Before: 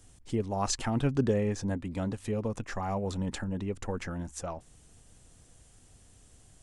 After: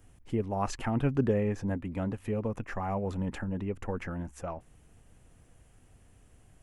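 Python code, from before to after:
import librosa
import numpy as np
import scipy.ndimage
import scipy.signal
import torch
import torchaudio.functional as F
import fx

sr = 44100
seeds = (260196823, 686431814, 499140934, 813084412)

y = fx.band_shelf(x, sr, hz=5700.0, db=-11.0, octaves=1.7)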